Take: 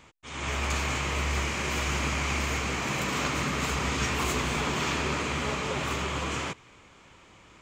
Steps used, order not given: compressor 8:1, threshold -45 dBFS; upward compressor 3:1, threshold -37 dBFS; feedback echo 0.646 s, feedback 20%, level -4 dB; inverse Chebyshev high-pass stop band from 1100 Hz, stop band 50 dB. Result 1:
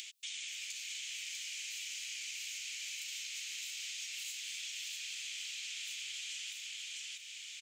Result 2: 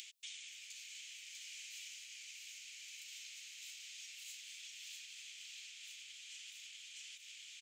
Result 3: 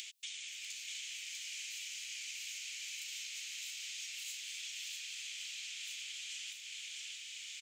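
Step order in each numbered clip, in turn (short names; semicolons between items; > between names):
inverse Chebyshev high-pass > compressor > feedback echo > upward compressor; feedback echo > compressor > upward compressor > inverse Chebyshev high-pass; compressor > inverse Chebyshev high-pass > upward compressor > feedback echo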